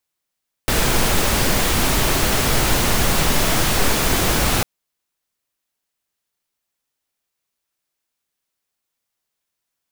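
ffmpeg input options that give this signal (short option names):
-f lavfi -i "anoisesrc=c=pink:a=0.724:d=3.95:r=44100:seed=1"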